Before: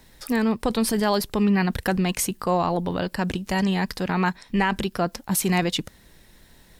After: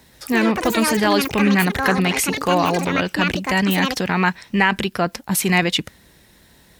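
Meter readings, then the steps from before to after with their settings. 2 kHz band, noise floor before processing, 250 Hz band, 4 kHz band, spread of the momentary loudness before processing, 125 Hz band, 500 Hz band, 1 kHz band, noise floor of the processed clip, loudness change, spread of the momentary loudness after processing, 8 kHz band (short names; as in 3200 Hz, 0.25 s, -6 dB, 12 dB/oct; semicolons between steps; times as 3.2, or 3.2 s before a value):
+9.5 dB, -54 dBFS, +4.0 dB, +7.5 dB, 5 LU, +3.0 dB, +4.0 dB, +5.5 dB, -52 dBFS, +5.5 dB, 4 LU, +4.0 dB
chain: echoes that change speed 0.138 s, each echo +7 st, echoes 2, each echo -6 dB; HPF 60 Hz; dynamic EQ 2200 Hz, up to +7 dB, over -41 dBFS, Q 1.1; gain +3 dB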